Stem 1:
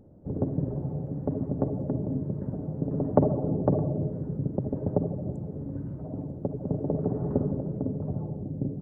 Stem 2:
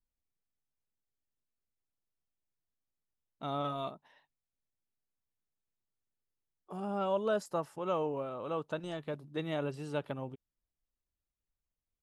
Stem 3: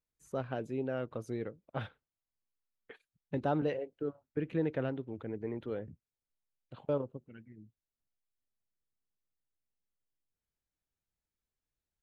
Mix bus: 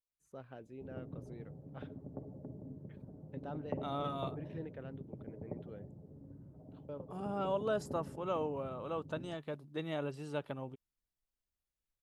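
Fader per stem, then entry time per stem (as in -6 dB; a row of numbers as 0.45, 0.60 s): -18.5, -3.0, -13.5 dB; 0.55, 0.40, 0.00 s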